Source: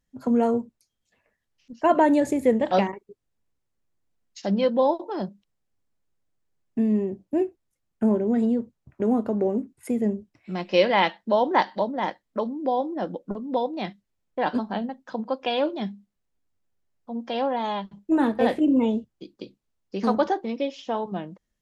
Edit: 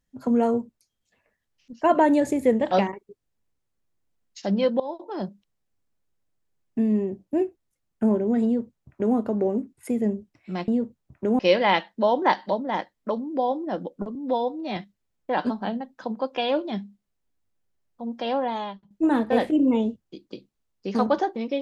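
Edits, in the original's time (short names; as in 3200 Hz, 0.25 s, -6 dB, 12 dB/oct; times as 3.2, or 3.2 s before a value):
4.8–5.25 fade in, from -19 dB
8.45–9.16 copy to 10.68
13.44–13.85 stretch 1.5×
17.55–17.99 fade out, to -17 dB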